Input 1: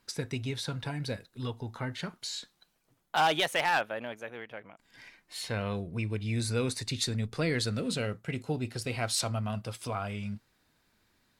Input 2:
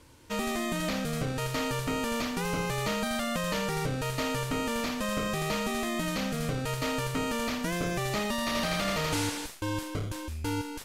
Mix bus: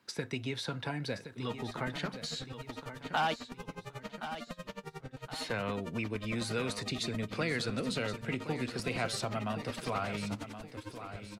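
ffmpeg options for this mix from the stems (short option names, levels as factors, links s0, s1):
-filter_complex "[0:a]highpass=120,acrossover=split=210|940[s0][s1][s2];[s0]acompressor=threshold=0.00631:ratio=4[s3];[s1]acompressor=threshold=0.0126:ratio=4[s4];[s2]acompressor=threshold=0.0224:ratio=4[s5];[s3][s4][s5]amix=inputs=3:normalize=0,volume=1.33,asplit=3[s6][s7][s8];[s6]atrim=end=3.34,asetpts=PTS-STARTPTS,afade=t=out:st=3.336:d=0.004:c=hsin[s9];[s7]atrim=start=3.34:end=5.31,asetpts=PTS-STARTPTS,volume=0[s10];[s8]atrim=start=5.31,asetpts=PTS-STARTPTS,afade=t=in:d=0.004:c=hsin[s11];[s9][s10][s11]concat=n=3:v=0:a=1,asplit=2[s12][s13];[s13]volume=0.282[s14];[1:a]aeval=exprs='val(0)*pow(10,-29*(0.5-0.5*cos(2*PI*11*n/s))/20)':c=same,adelay=1150,volume=0.398[s15];[s14]aecho=0:1:1071|2142|3213|4284|5355|6426:1|0.42|0.176|0.0741|0.0311|0.0131[s16];[s12][s15][s16]amix=inputs=3:normalize=0,highshelf=f=5400:g=-10.5"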